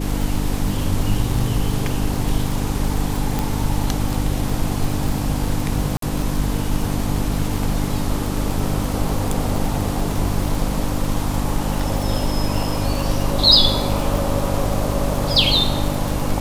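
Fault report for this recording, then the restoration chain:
surface crackle 57 per second −22 dBFS
mains hum 50 Hz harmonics 6 −24 dBFS
0:03.39: click
0:05.97–0:06.02: drop-out 53 ms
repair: click removal
hum removal 50 Hz, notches 6
repair the gap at 0:05.97, 53 ms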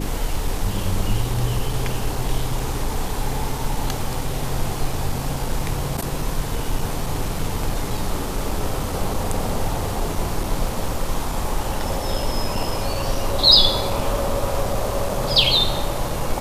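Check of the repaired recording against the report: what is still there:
none of them is left

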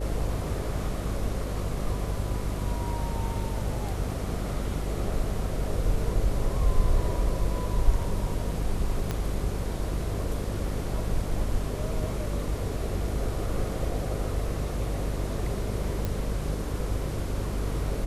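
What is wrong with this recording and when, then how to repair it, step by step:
mains buzz 50 Hz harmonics 9 −32 dBFS
0:09.11: click −15 dBFS
0:16.05: click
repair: click removal
hum removal 50 Hz, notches 9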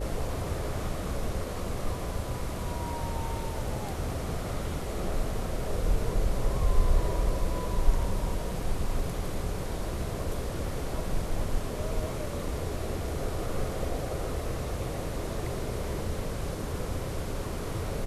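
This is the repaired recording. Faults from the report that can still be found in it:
0:09.11: click

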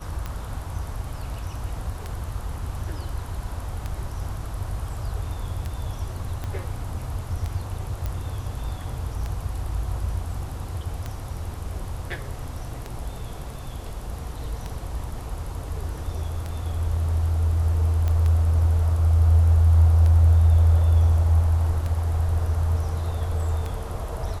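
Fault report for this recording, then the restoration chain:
scratch tick 33 1/3 rpm −17 dBFS
0:06.44: click −18 dBFS
0:08.06: click −16 dBFS
0:18.08: click −15 dBFS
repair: click removal

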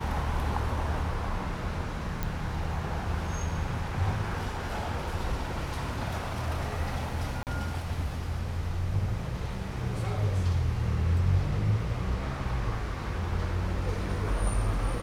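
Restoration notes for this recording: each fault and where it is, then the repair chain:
0:02.23: click
0:07.43–0:07.47: drop-out 38 ms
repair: click removal
repair the gap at 0:07.43, 38 ms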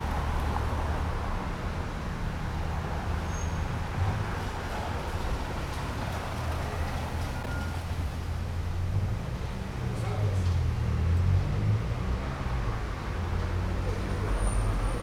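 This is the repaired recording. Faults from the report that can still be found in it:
none of them is left

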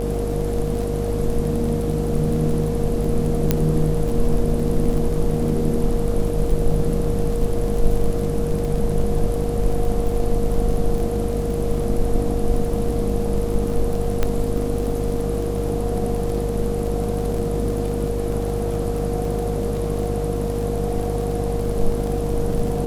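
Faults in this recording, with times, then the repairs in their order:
mains buzz 50 Hz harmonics 14 −25 dBFS
surface crackle 34 per second −26 dBFS
whistle 470 Hz −25 dBFS
0:03.51: click −3 dBFS
0:14.23: click −7 dBFS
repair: click removal
hum removal 50 Hz, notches 14
notch filter 470 Hz, Q 30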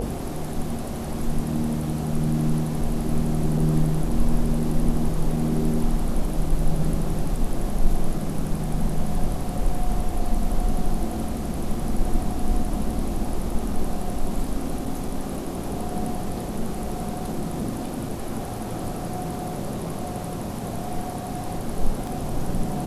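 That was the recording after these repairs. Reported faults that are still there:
0:14.23: click

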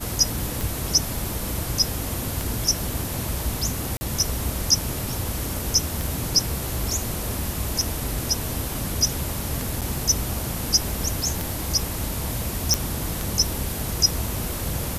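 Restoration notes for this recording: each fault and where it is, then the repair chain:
scratch tick 33 1/3 rpm
0:03.97–0:04.01: drop-out 40 ms
0:09.81–0:09.82: drop-out 7.3 ms
0:12.74: click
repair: click removal
repair the gap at 0:03.97, 40 ms
repair the gap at 0:09.81, 7.3 ms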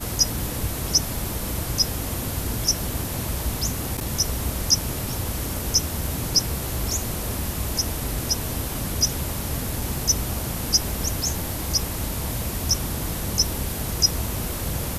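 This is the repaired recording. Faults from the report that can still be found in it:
none of them is left

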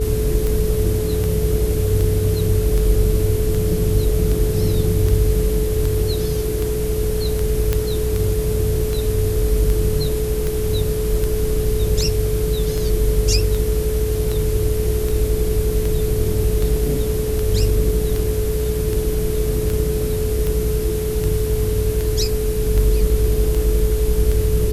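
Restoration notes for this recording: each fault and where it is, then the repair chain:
mains hum 60 Hz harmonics 8 −24 dBFS
scratch tick 78 rpm
whistle 430 Hz −22 dBFS
0:07.73: click −5 dBFS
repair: click removal
hum removal 60 Hz, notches 8
notch filter 430 Hz, Q 30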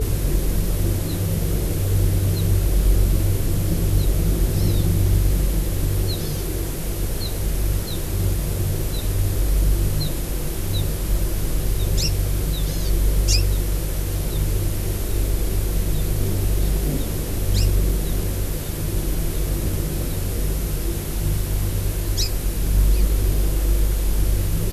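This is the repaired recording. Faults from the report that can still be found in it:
none of them is left

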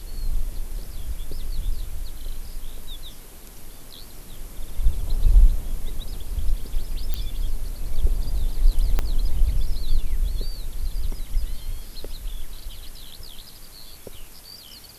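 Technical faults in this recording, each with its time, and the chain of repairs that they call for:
0:07.14: click −12 dBFS
0:08.99: click −9 dBFS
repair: click removal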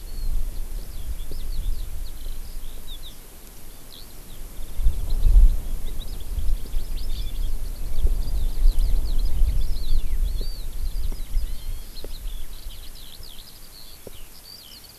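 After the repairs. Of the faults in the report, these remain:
0:08.99: click

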